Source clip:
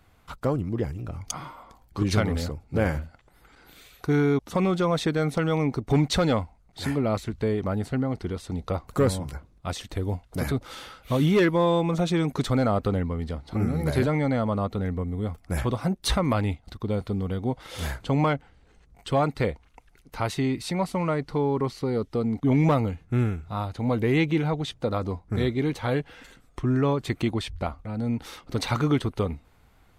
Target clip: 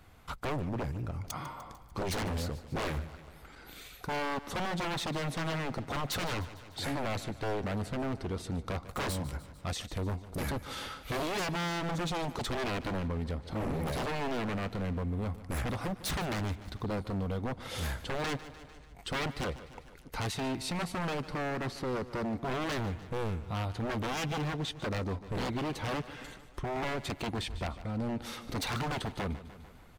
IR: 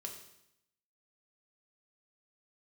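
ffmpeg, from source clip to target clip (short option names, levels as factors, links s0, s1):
-filter_complex "[0:a]asettb=1/sr,asplit=3[s0][s1][s2];[s0]atrim=end=5.074[s3];[s1]atrim=start=5.07:end=7.63,asetpts=PTS-STARTPTS,afade=t=in:d=0.004:c=qsin,afade=t=out:st=2.556:d=0.004:c=qsin,highpass=f=75:w=0.5412,highpass=f=75:w=1.3066[s4];[s2]atrim=start=7.626[s5];[s3][s4]acrossfade=d=0.004:c1=hsin:c2=qsin[s6];[s6][s5]acrossfade=d=0.004:c1=qsin:c2=hsin,aeval=exprs='0.0562*(abs(mod(val(0)/0.0562+3,4)-2)-1)':c=same,aecho=1:1:149|298|447|596|745:0.141|0.0735|0.0382|0.0199|0.0103,alimiter=level_in=1.88:limit=0.0631:level=0:latency=1:release=343,volume=0.531,aeval=exprs='clip(val(0),-1,0.0266)':c=same,volume=1.26"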